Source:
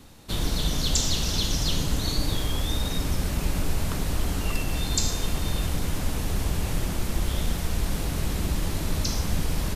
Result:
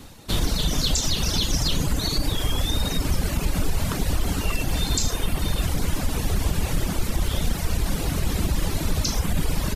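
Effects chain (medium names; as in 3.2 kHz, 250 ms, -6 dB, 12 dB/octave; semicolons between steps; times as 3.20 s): reverb removal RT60 1.1 s; peak limiter -19 dBFS, peak gain reduction 7.5 dB; trim +6.5 dB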